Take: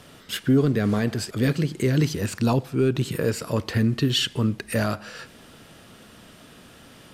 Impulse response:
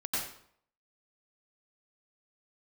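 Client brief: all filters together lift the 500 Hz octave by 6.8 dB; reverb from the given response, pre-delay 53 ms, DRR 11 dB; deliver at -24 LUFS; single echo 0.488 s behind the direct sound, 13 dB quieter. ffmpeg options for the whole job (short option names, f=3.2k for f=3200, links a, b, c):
-filter_complex "[0:a]equalizer=f=500:t=o:g=8.5,aecho=1:1:488:0.224,asplit=2[a][b];[1:a]atrim=start_sample=2205,adelay=53[c];[b][c]afir=irnorm=-1:irlink=0,volume=-16.5dB[d];[a][d]amix=inputs=2:normalize=0,volume=-3.5dB"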